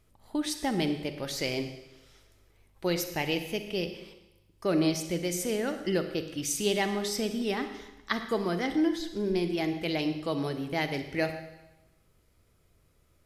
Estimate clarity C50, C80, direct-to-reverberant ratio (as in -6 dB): 9.0 dB, 10.5 dB, 8.0 dB